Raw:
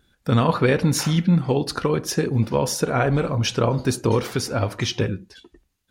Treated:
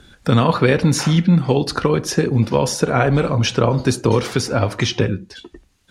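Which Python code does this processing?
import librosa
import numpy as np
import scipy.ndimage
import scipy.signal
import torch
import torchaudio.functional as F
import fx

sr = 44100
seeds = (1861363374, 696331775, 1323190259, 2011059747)

y = scipy.signal.sosfilt(scipy.signal.butter(2, 9800.0, 'lowpass', fs=sr, output='sos'), x)
y = fx.band_squash(y, sr, depth_pct=40)
y = y * librosa.db_to_amplitude(4.0)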